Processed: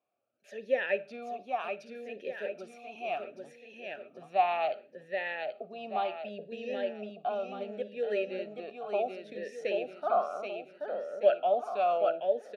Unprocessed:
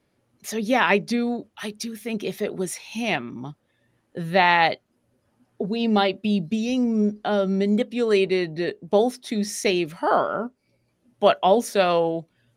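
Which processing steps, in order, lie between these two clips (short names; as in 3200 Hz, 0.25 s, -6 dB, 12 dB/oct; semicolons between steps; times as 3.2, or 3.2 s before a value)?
feedback echo 0.78 s, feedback 42%, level -3.5 dB; reverb RT60 0.40 s, pre-delay 39 ms, DRR 18 dB; vowel sweep a-e 0.68 Hz; gain -2 dB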